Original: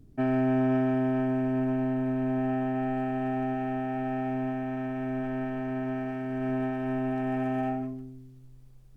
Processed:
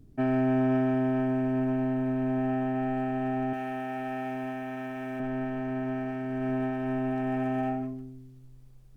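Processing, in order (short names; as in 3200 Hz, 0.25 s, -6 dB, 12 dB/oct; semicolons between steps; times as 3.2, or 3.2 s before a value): 3.53–5.2 tilt +2.5 dB/oct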